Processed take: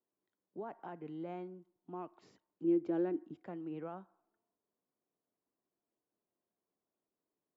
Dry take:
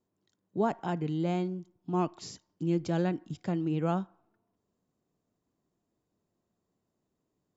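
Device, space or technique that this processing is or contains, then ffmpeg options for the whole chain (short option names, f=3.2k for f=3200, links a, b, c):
DJ mixer with the lows and highs turned down: -filter_complex "[0:a]acrossover=split=260 2500:gain=0.178 1 0.0708[a][b][c];[a][b][c]amix=inputs=3:normalize=0,alimiter=level_in=2dB:limit=-24dB:level=0:latency=1:release=202,volume=-2dB,asettb=1/sr,asplit=3[d][e][f];[d]atrim=end=2.644[g];[e]atrim=start=2.64:end=3.44,asetpts=PTS-STARTPTS,afade=t=in:d=0.004:c=qsin,afade=t=out:st=0.796:d=0.004:c=qsin,equalizer=f=330:t=o:w=0.8:g=13[h];[f]atrim=start=3.436[i];[g][h]acrossfade=d=0.004:c1=hsin:c2=qsin[j];[j][i]acrossfade=d=0.004:c1=qsin:c2=hsin,volume=-8dB"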